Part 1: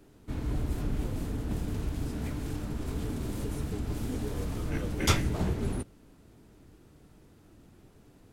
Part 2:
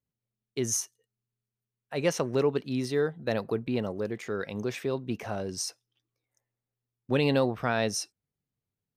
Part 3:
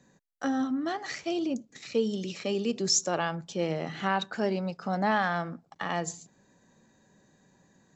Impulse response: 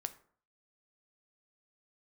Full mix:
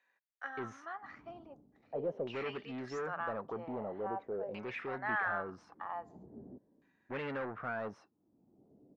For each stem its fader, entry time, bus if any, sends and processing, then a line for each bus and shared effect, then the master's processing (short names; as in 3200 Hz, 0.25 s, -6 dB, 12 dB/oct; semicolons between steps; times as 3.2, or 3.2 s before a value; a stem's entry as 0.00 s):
-0.5 dB, 0.75 s, no send, compressor 4:1, threshold -42 dBFS, peak gain reduction 19.5 dB; band-pass 230 Hz, Q 1.4; auto duck -17 dB, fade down 0.55 s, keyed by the second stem
-6.0 dB, 0.00 s, no send, expander -38 dBFS; soft clip -29.5 dBFS, distortion -7 dB
-9.5 dB, 0.00 s, no send, HPF 910 Hz 12 dB/oct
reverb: off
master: low shelf 160 Hz -9 dB; LFO low-pass saw down 0.44 Hz 530–2500 Hz